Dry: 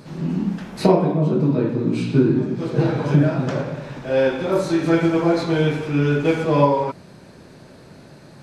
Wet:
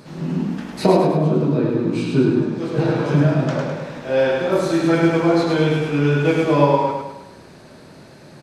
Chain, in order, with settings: low shelf 170 Hz -5.5 dB; on a send: feedback echo 0.104 s, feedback 47%, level -4 dB; on the sum: gain +1 dB

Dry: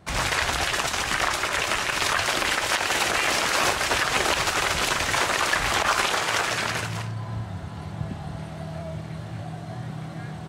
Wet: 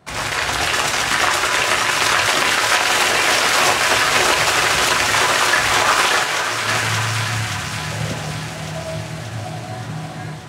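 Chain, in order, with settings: HPF 52 Hz; low shelf 150 Hz -6.5 dB; shoebox room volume 48 m³, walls mixed, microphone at 0.32 m; AGC gain up to 5.5 dB; 7.91–8.31 bell 530 Hz +12 dB 0.45 oct; thinning echo 0.577 s, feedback 67%, high-pass 1000 Hz, level -5 dB; 6.23–6.67 detuned doubles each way 29 cents -> 13 cents; gain +1 dB

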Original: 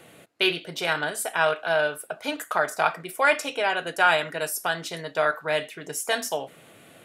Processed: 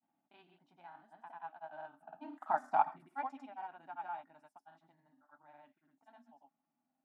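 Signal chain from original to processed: Doppler pass-by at 2.65, 8 m/s, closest 1.5 m; double band-pass 460 Hz, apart 1.7 oct; grains, grains 20/s, pitch spread up and down by 0 st; gain +4 dB

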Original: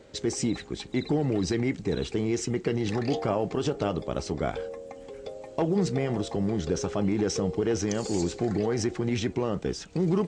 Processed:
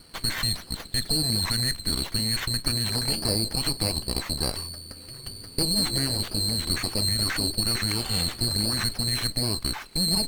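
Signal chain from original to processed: band-swap scrambler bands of 4000 Hz; HPF 660 Hz 24 dB/oct; running maximum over 5 samples; gain +3.5 dB

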